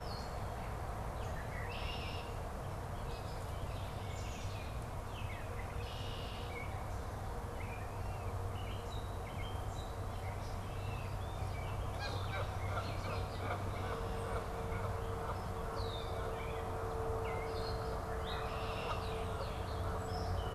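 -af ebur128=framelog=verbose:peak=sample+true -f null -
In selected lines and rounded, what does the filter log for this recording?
Integrated loudness:
  I:         -41.9 LUFS
  Threshold: -51.9 LUFS
Loudness range:
  LRA:         3.3 LU
  Threshold: -61.9 LUFS
  LRA low:   -43.6 LUFS
  LRA high:  -40.3 LUFS
Sample peak:
  Peak:      -26.3 dBFS
True peak:
  Peak:      -26.3 dBFS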